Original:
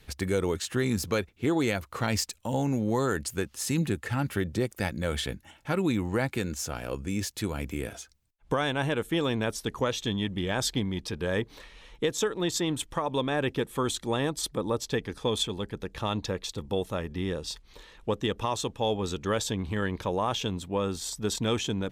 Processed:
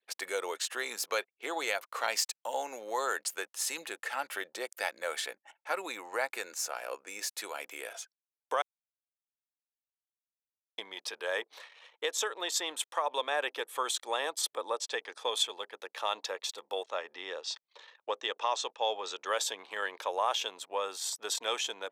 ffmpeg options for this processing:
ffmpeg -i in.wav -filter_complex "[0:a]asettb=1/sr,asplit=3[link_01][link_02][link_03];[link_01]atrim=end=5.014[link_04];[link_02]atrim=start=5.01:end=7.42,asetpts=PTS-STARTPTS,afade=type=in:duration=0.004:curve=qsin,afade=type=out:start_time=2.406:duration=0.004:curve=qsin,equalizer=frequency=3200:width=4.3:gain=-7[link_05];[link_03]atrim=start=7.416[link_06];[link_04][link_05]acrossfade=duration=0.004:curve1=hsin:curve2=qsin[link_07];[link_07][link_06]acrossfade=duration=0.004:curve1=qsin:curve2=hsin,asettb=1/sr,asplit=3[link_08][link_09][link_10];[link_08]atrim=end=14.624[link_11];[link_09]atrim=start=14.62:end=15.19,asetpts=PTS-STARTPTS,afade=type=in:duration=0.004:curve=qsin,afade=type=out:start_time=0.566:duration=0.004:curve=qsin,lowpass=frequency=10000:width=0.5412,lowpass=frequency=10000:width=1.3066[link_12];[link_10]atrim=start=15.186[link_13];[link_11][link_12]acrossfade=duration=0.004:curve1=hsin:curve2=qsin[link_14];[link_14][link_13]acrossfade=duration=0.004:curve1=qsin:curve2=hsin,asettb=1/sr,asplit=3[link_15][link_16][link_17];[link_15]atrim=end=16.834[link_18];[link_16]atrim=start=16.83:end=19.25,asetpts=PTS-STARTPTS,afade=type=in:duration=0.004:curve=qsin,afade=type=out:start_time=2.416:duration=0.004:curve=qsin,lowpass=frequency=6900:width=0.5412,lowpass=frequency=6900:width=1.3066[link_19];[link_17]atrim=start=19.246[link_20];[link_18][link_19]acrossfade=duration=0.004:curve1=hsin:curve2=qsin[link_21];[link_21][link_20]acrossfade=duration=0.004:curve1=qsin:curve2=hsin,asplit=3[link_22][link_23][link_24];[link_22]atrim=end=8.62,asetpts=PTS-STARTPTS,afade=type=out:start_time=8.616:duration=0.004:curve=hsin[link_25];[link_23]atrim=start=8.62:end=10.78,asetpts=PTS-STARTPTS,volume=0[link_26];[link_24]atrim=start=10.78,asetpts=PTS-STARTPTS,afade=type=in:duration=0.004:curve=hsin[link_27];[link_25][link_26][link_27]concat=n=3:v=0:a=1,anlmdn=0.00251,highpass=frequency=560:width=0.5412,highpass=frequency=560:width=1.3066" out.wav

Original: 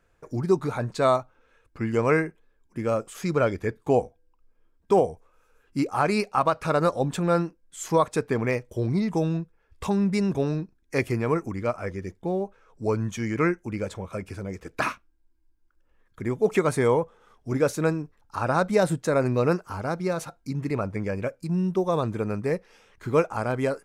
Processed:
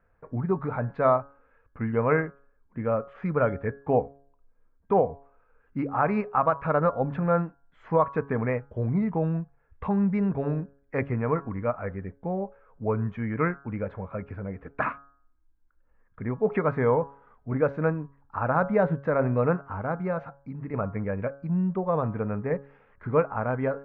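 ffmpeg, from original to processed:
ffmpeg -i in.wav -filter_complex "[0:a]asettb=1/sr,asplit=3[link_01][link_02][link_03];[link_01]atrim=end=20.184[link_04];[link_02]atrim=start=20.18:end=20.74,asetpts=PTS-STARTPTS,afade=type=in:duration=0.004:curve=qsin,afade=type=out:start_time=0.556:duration=0.004:curve=qsin,acompressor=threshold=-37dB:ratio=1.5:attack=3.2:release=140:knee=1:detection=peak[link_05];[link_03]atrim=start=20.736[link_06];[link_04][link_05]acrossfade=duration=0.004:curve1=hsin:curve2=qsin[link_07];[link_07][link_06]acrossfade=duration=0.004:curve1=qsin:curve2=hsin,lowpass=frequency=1900:width=0.5412,lowpass=frequency=1900:width=1.3066,equalizer=frequency=350:width_type=o:width=0.27:gain=-11,bandreject=frequency=139.2:width_type=h:width=4,bandreject=frequency=278.4:width_type=h:width=4,bandreject=frequency=417.6:width_type=h:width=4,bandreject=frequency=556.8:width_type=h:width=4,bandreject=frequency=696:width_type=h:width=4,bandreject=frequency=835.2:width_type=h:width=4,bandreject=frequency=974.4:width_type=h:width=4,bandreject=frequency=1113.6:width_type=h:width=4,bandreject=frequency=1252.8:width_type=h:width=4,bandreject=frequency=1392:width_type=h:width=4,bandreject=frequency=1531.2:width_type=h:width=4,bandreject=frequency=1670.4:width_type=h:width=4" out.wav

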